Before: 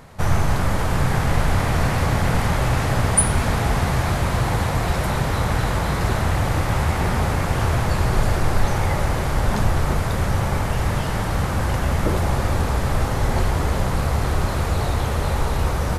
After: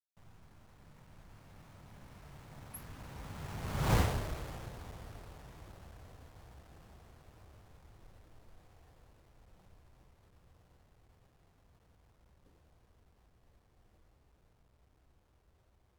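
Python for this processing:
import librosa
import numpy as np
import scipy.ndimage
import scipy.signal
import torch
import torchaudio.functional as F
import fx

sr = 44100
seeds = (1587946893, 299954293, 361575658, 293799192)

y = fx.delta_hold(x, sr, step_db=-21.5)
y = fx.doppler_pass(y, sr, speed_mps=47, closest_m=3.4, pass_at_s=3.96)
y = y * 10.0 ** (-5.5 / 20.0)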